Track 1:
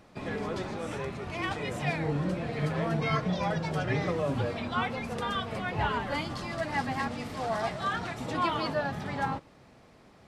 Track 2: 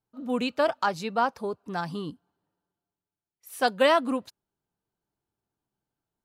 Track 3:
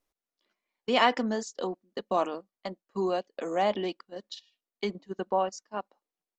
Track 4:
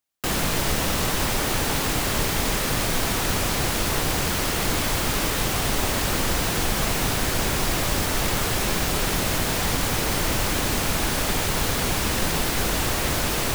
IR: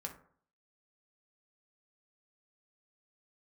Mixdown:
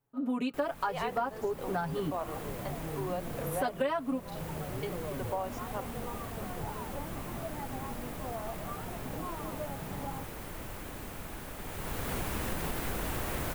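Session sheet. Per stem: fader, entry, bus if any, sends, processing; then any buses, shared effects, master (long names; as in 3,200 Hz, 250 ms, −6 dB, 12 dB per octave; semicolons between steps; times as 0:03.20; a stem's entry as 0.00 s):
−4.5 dB, 0.85 s, no send, downward compressor, threshold −30 dBFS, peak gain reduction 7 dB; Savitzky-Golay smoothing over 65 samples
+2.5 dB, 0.00 s, no send, comb filter 7.2 ms, depth 99%
−3.0 dB, 0.00 s, no send, inverse Chebyshev high-pass filter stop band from 200 Hz
0:11.59 −17.5 dB → 0:12.17 −7 dB, 0.30 s, no send, no processing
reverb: not used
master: parametric band 5,100 Hz −10 dB 1.7 octaves; downward compressor 5 to 1, threshold −30 dBFS, peak gain reduction 18 dB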